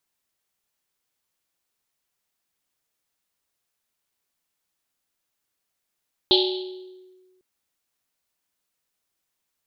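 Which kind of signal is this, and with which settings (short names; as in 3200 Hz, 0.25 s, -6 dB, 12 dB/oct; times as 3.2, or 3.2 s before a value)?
Risset drum, pitch 370 Hz, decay 1.53 s, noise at 3700 Hz, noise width 1300 Hz, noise 45%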